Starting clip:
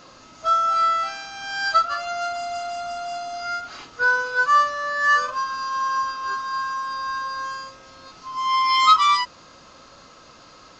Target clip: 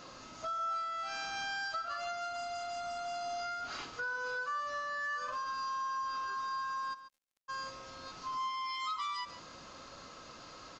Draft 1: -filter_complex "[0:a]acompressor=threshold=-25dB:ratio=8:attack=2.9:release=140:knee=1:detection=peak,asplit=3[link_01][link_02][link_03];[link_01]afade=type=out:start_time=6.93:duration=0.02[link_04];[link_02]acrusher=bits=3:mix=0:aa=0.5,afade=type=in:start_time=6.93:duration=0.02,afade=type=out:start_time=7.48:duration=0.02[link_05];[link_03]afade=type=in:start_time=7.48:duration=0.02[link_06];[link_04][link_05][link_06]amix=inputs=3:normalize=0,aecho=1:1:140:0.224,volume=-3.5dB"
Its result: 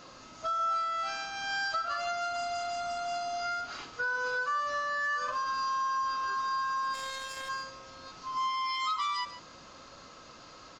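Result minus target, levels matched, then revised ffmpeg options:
downward compressor: peak gain reduction −5.5 dB
-filter_complex "[0:a]acompressor=threshold=-31.5dB:ratio=8:attack=2.9:release=140:knee=1:detection=peak,asplit=3[link_01][link_02][link_03];[link_01]afade=type=out:start_time=6.93:duration=0.02[link_04];[link_02]acrusher=bits=3:mix=0:aa=0.5,afade=type=in:start_time=6.93:duration=0.02,afade=type=out:start_time=7.48:duration=0.02[link_05];[link_03]afade=type=in:start_time=7.48:duration=0.02[link_06];[link_04][link_05][link_06]amix=inputs=3:normalize=0,aecho=1:1:140:0.224,volume=-3.5dB"

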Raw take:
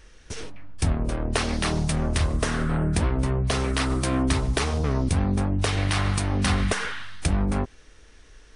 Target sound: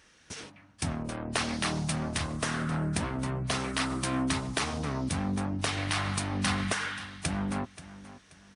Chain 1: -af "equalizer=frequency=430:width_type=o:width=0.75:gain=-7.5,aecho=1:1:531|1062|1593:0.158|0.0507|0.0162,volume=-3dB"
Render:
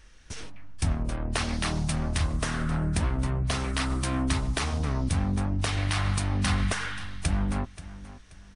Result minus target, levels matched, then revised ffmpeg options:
125 Hz band +3.5 dB
-af "highpass=140,equalizer=frequency=430:width_type=o:width=0.75:gain=-7.5,aecho=1:1:531|1062|1593:0.158|0.0507|0.0162,volume=-3dB"

